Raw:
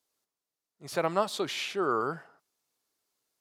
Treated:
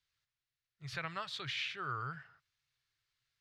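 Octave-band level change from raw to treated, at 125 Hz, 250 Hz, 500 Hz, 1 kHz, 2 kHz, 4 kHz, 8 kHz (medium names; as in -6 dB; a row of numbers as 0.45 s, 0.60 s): -2.0 dB, -16.0 dB, -21.0 dB, -10.5 dB, -3.0 dB, -4.0 dB, -13.5 dB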